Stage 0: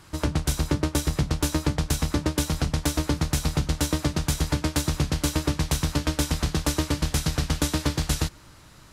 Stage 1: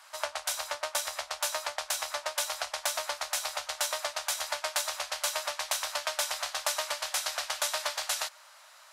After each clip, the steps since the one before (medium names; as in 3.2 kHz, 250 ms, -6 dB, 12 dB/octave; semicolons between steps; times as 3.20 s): elliptic high-pass 600 Hz, stop band 40 dB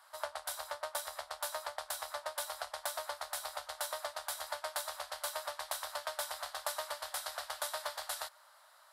fifteen-band graphic EQ 250 Hz -8 dB, 2.5 kHz -11 dB, 6.3 kHz -11 dB; trim -4 dB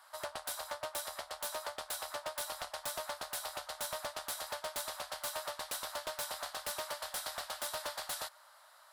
wavefolder -33 dBFS; trim +1.5 dB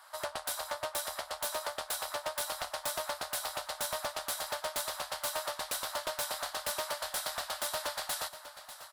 feedback delay 594 ms, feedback 45%, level -13.5 dB; trim +4 dB